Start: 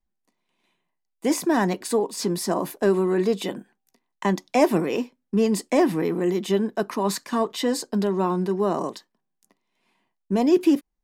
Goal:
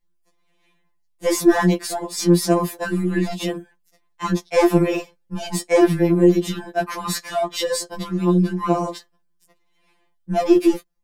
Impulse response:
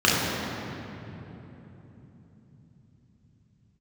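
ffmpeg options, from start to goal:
-af "aeval=exprs='0.447*(cos(1*acos(clip(val(0)/0.447,-1,1)))-cos(1*PI/2))+0.0562*(cos(2*acos(clip(val(0)/0.447,-1,1)))-cos(2*PI/2))':channel_layout=same,asoftclip=type=tanh:threshold=-13dB,afftfilt=real='re*2.83*eq(mod(b,8),0)':imag='im*2.83*eq(mod(b,8),0)':win_size=2048:overlap=0.75,volume=7dB"

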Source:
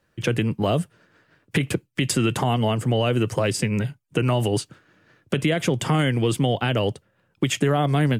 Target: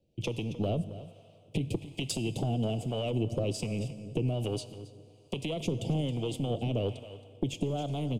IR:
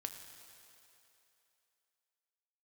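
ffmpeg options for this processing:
-filter_complex "[0:a]highshelf=frequency=6000:gain=-10.5,acompressor=threshold=-22dB:ratio=6,asuperstop=centerf=1400:order=8:qfactor=0.74,aeval=exprs='0.282*(cos(1*acos(clip(val(0)/0.282,-1,1)))-cos(1*PI/2))+0.0891*(cos(2*acos(clip(val(0)/0.282,-1,1)))-cos(2*PI/2))+0.0112*(cos(5*acos(clip(val(0)/0.282,-1,1)))-cos(5*PI/2))':channel_layout=same,aecho=1:1:272:0.178,asplit=2[link_01][link_02];[1:a]atrim=start_sample=2205[link_03];[link_02][link_03]afir=irnorm=-1:irlink=0,volume=-0.5dB[link_04];[link_01][link_04]amix=inputs=2:normalize=0,acrossover=split=600[link_05][link_06];[link_05]aeval=exprs='val(0)*(1-0.5/2+0.5/2*cos(2*PI*1.2*n/s))':channel_layout=same[link_07];[link_06]aeval=exprs='val(0)*(1-0.5/2-0.5/2*cos(2*PI*1.2*n/s))':channel_layout=same[link_08];[link_07][link_08]amix=inputs=2:normalize=0,volume=-8dB"

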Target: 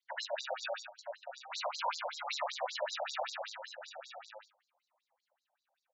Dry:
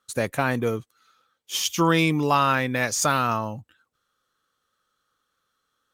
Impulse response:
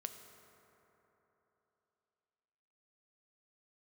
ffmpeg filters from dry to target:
-filter_complex "[0:a]asplit=2[link_01][link_02];[link_02]aeval=exprs='0.075*(abs(mod(val(0)/0.075+3,4)-2)-1)':channel_layout=same,volume=-5dB[link_03];[link_01][link_03]amix=inputs=2:normalize=0,highshelf=frequency=2300:gain=8.5,acompressor=threshold=-19dB:ratio=6,acrusher=samples=33:mix=1:aa=0.000001:lfo=1:lforange=19.8:lforate=0.39,equalizer=frequency=3900:width=7.5:gain=5.5,aecho=1:1:121|889:0.501|0.376,flanger=delay=8.8:depth=1.6:regen=88:speed=0.73:shape=triangular[link_04];[1:a]atrim=start_sample=2205,atrim=end_sample=3087[link_05];[link_04][link_05]afir=irnorm=-1:irlink=0,afftfilt=real='re*between(b*sr/1024,680*pow(5500/680,0.5+0.5*sin(2*PI*5.2*pts/sr))/1.41,680*pow(5500/680,0.5+0.5*sin(2*PI*5.2*pts/sr))*1.41)':imag='im*between(b*sr/1024,680*pow(5500/680,0.5+0.5*sin(2*PI*5.2*pts/sr))/1.41,680*pow(5500/680,0.5+0.5*sin(2*PI*5.2*pts/sr))*1.41)':win_size=1024:overlap=0.75,volume=2.5dB"

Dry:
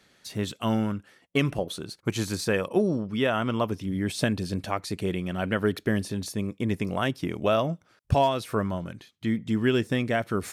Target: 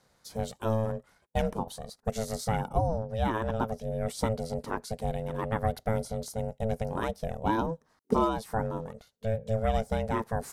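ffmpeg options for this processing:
ffmpeg -i in.wav -af "aeval=exprs='val(0)*sin(2*PI*330*n/s)':channel_layout=same,equalizer=frequency=2700:width=1.2:gain=-11.5" out.wav

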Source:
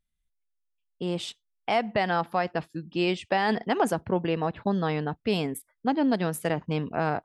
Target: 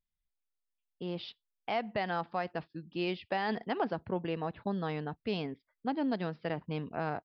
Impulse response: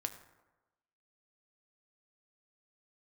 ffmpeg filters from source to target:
-af "aresample=11025,aresample=44100,volume=-8dB"

